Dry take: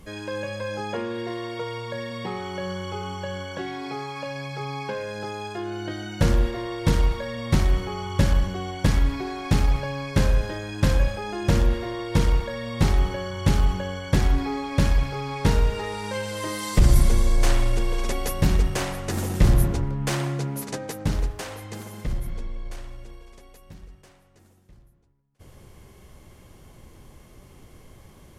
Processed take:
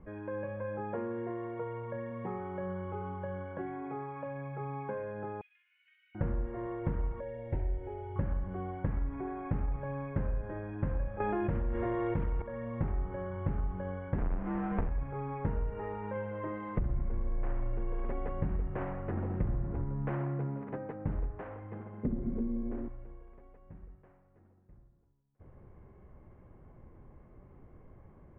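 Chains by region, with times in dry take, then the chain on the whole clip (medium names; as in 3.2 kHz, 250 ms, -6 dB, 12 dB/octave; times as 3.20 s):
5.41–6.15 s: CVSD coder 32 kbps + elliptic high-pass 2.3 kHz, stop band 70 dB
7.20–8.16 s: peaking EQ 950 Hz +10 dB 0.2 oct + static phaser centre 470 Hz, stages 4
11.20–12.42 s: treble shelf 2.9 kHz +9.5 dB + level flattener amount 70%
14.18–14.89 s: square wave that keeps the level + upward compressor, threshold -22 dBFS + frequency shift -80 Hz
22.03–22.88 s: peaking EQ 230 Hz +11 dB 0.24 oct + small resonant body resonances 260/380 Hz, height 18 dB
whole clip: Bessel low-pass 1.2 kHz, order 8; compression 5:1, threshold -23 dBFS; trim -6 dB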